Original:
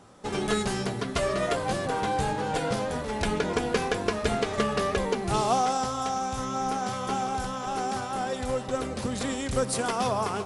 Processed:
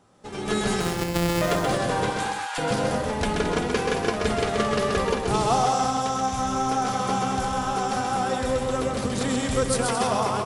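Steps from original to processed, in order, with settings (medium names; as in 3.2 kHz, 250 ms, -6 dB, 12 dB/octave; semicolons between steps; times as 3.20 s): 0.80–1.42 s: sorted samples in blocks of 256 samples; 2.10–2.58 s: high-pass 990 Hz 24 dB/octave; bouncing-ball echo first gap 130 ms, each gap 0.7×, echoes 5; level rider gain up to 10 dB; trim -7 dB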